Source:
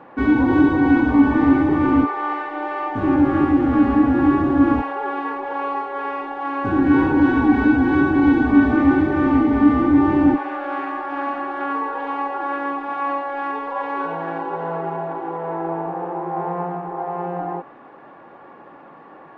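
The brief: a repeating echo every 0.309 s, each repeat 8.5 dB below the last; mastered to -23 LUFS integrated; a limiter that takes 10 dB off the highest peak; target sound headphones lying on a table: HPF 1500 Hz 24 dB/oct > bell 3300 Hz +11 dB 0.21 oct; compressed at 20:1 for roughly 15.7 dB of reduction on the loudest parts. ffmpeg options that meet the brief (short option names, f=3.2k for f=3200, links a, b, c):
-af "acompressor=threshold=-25dB:ratio=20,alimiter=level_in=3dB:limit=-24dB:level=0:latency=1,volume=-3dB,highpass=f=1.5k:w=0.5412,highpass=f=1.5k:w=1.3066,equalizer=f=3.3k:t=o:w=0.21:g=11,aecho=1:1:309|618|927|1236:0.376|0.143|0.0543|0.0206,volume=23dB"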